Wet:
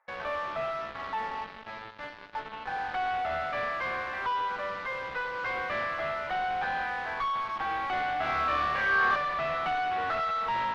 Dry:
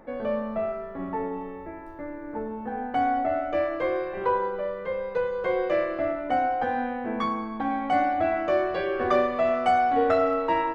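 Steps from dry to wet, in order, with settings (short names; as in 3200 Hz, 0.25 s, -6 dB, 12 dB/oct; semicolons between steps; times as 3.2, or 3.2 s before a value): Bessel high-pass 1500 Hz, order 4; bell 4500 Hz -11 dB 1.2 oct; in parallel at -10 dB: fuzz box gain 55 dB, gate -50 dBFS; on the sum: air absorption 310 m; 8.17–9.16 flutter echo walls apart 4.8 m, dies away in 0.66 s; gain -5.5 dB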